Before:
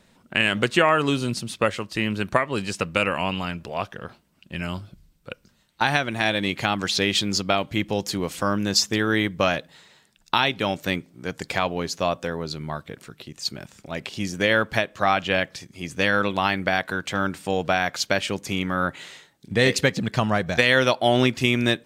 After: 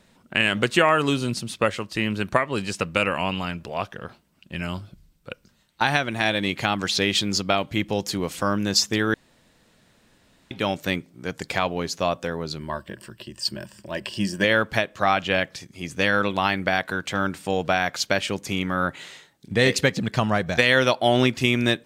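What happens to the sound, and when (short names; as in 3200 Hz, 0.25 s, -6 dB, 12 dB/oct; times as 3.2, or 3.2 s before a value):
0.68–1.14 high shelf 8000 Hz +5.5 dB
9.14–10.51 room tone
12.59–14.44 ripple EQ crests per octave 1.3, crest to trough 11 dB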